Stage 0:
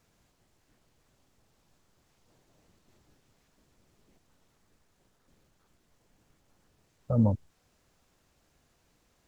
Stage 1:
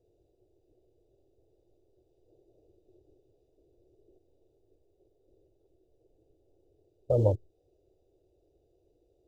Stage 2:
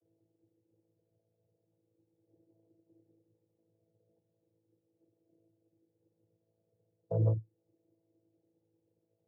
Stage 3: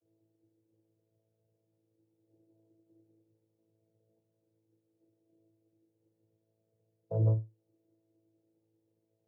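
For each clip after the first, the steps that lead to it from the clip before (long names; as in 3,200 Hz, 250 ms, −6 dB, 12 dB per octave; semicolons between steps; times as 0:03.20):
adaptive Wiener filter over 41 samples; drawn EQ curve 110 Hz 0 dB, 220 Hz −17 dB, 360 Hz +14 dB, 730 Hz +4 dB, 1,700 Hz −22 dB, 3,200 Hz +8 dB
channel vocoder with a chord as carrier bare fifth, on A2; level −3 dB
tuned comb filter 110 Hz, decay 0.21 s, harmonics all, mix 60%; level +2 dB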